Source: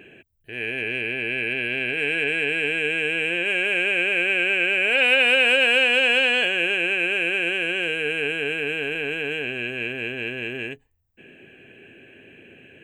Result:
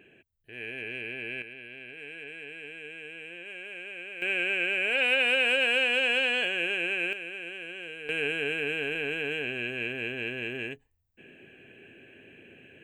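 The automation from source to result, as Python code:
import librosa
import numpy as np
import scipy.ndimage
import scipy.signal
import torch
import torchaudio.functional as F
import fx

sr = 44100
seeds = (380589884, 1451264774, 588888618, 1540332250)

y = fx.gain(x, sr, db=fx.steps((0.0, -10.0), (1.42, -19.0), (4.22, -7.0), (7.13, -15.5), (8.09, -4.5)))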